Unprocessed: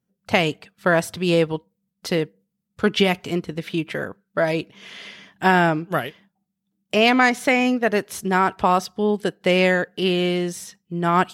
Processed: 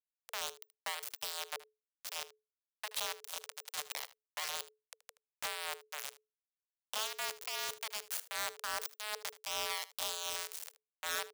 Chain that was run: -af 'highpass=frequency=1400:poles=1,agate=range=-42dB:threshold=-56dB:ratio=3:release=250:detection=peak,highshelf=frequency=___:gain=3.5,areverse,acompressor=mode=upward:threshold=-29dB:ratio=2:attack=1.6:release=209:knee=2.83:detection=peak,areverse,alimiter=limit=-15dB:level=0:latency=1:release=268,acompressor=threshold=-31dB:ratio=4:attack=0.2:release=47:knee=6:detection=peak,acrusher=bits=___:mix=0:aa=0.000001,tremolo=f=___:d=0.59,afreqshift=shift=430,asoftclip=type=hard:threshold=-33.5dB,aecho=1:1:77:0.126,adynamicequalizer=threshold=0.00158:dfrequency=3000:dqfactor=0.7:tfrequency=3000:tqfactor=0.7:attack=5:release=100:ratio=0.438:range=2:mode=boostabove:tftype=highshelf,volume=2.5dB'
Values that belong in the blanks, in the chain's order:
8200, 4, 2.6